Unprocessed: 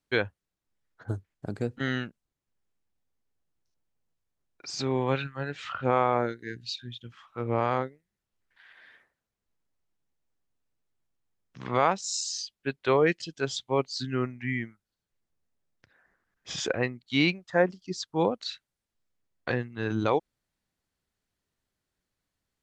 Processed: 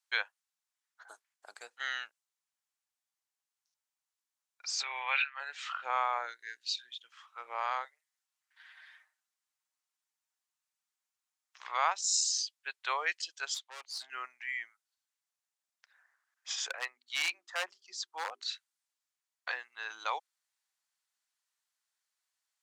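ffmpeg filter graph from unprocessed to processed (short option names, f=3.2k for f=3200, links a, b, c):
-filter_complex "[0:a]asettb=1/sr,asplit=3[a][b][c];[a]atrim=end=4.834[d];[b]atrim=start=4.83:end=5.4,asetpts=PTS-STARTPTS,afade=t=in:d=0.004:c=qsin,afade=t=out:st=0.566:d=0.004:c=qsin,highpass=480,lowpass=3.5k,equalizer=f=2.4k:t=o:w=0.83:g=13[e];[c]atrim=start=5.396[f];[d][e]acrossfade=d=0.004:c1=hsin:c2=qsin[g];[g][f]acrossfade=d=0.004:c1=qsin:c2=hsin,asettb=1/sr,asplit=3[h][i][j];[h]atrim=end=7.854[k];[i]atrim=start=7.85:end=11.6,asetpts=PTS-STARTPTS,afade=t=in:d=0.004:c=qsin,afade=t=out:st=3.746:d=0.004:c=qsin,highpass=f=580:w=0.5412,highpass=f=580:w=1.3066,aecho=1:1:6.5:0.57,atrim=end_sample=165375[l];[j]atrim=start=11.596[m];[k][l]acrossfade=d=0.004:c1=hsin:c2=qsin[n];[n][m]acrossfade=d=0.004:c1=qsin:c2=hsin,asettb=1/sr,asplit=3[o][p][q];[o]atrim=end=13.544[r];[p]atrim=start=13.54:end=14.1,asetpts=PTS-STARTPTS,afade=t=in:d=0.004:c=qsin,afade=t=out:st=0.556:d=0.004:c=qsin,highshelf=f=5.1k:g=-7,aeval=exprs='(tanh(44.7*val(0)+0.5)-tanh(0.5))/44.7':c=same[s];[q]atrim=start=14.096[t];[r][s]acrossfade=d=0.004:c1=hsin:c2=qsin[u];[u][t]acrossfade=d=0.004:c1=qsin:c2=hsin,asettb=1/sr,asplit=3[v][w][x];[v]atrim=end=16.554[y];[w]atrim=start=16.55:end=18.48,asetpts=PTS-STARTPTS,afade=t=in:d=0.004:c=qsin,afade=t=out:st=1.926:d=0.004:c=qsin,highshelf=f=2.6k:g=-5,bandreject=f=50:t=h:w=6,bandreject=f=100:t=h:w=6,bandreject=f=150:t=h:w=6,bandreject=f=200:t=h:w=6,bandreject=f=250:t=h:w=6,bandreject=f=300:t=h:w=6,bandreject=f=350:t=h:w=6,bandreject=f=400:t=h:w=6,aeval=exprs='0.126*(abs(mod(val(0)/0.126+3,4)-2)-1)':c=same[z];[x]atrim=start=18.476[aa];[y][z]acrossfade=d=0.004:c1=hsin:c2=qsin[ab];[ab][aa]acrossfade=d=0.004:c1=qsin:c2=hsin,highpass=f=840:w=0.5412,highpass=f=840:w=1.3066,equalizer=f=7.4k:t=o:w=1.5:g=6.5,volume=-3dB"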